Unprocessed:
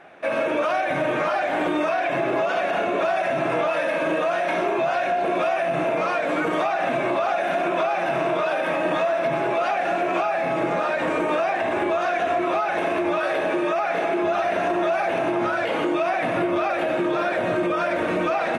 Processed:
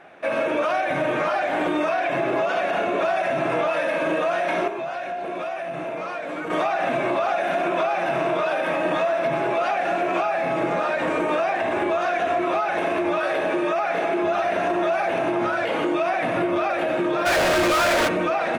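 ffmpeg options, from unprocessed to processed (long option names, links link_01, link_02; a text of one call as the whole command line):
ffmpeg -i in.wav -filter_complex "[0:a]asplit=3[link_01][link_02][link_03];[link_01]afade=type=out:start_time=17.25:duration=0.02[link_04];[link_02]asplit=2[link_05][link_06];[link_06]highpass=frequency=720:poles=1,volume=34dB,asoftclip=type=tanh:threshold=-14.5dB[link_07];[link_05][link_07]amix=inputs=2:normalize=0,lowpass=frequency=8000:poles=1,volume=-6dB,afade=type=in:start_time=17.25:duration=0.02,afade=type=out:start_time=18.07:duration=0.02[link_08];[link_03]afade=type=in:start_time=18.07:duration=0.02[link_09];[link_04][link_08][link_09]amix=inputs=3:normalize=0,asplit=3[link_10][link_11][link_12];[link_10]atrim=end=4.682[link_13];[link_11]atrim=start=4.678:end=6.502,asetpts=PTS-STARTPTS,volume=-7dB[link_14];[link_12]atrim=start=6.498[link_15];[link_13][link_14]acrossfade=duration=0.004:curve1=hsin:curve2=hsin[link_16];[link_16][link_15]acrossfade=duration=0.004:curve1=hsin:curve2=hsin" out.wav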